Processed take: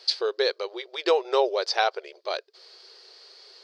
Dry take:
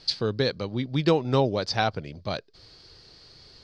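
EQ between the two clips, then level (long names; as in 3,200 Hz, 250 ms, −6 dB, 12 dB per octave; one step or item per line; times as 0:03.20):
linear-phase brick-wall high-pass 350 Hz
+2.0 dB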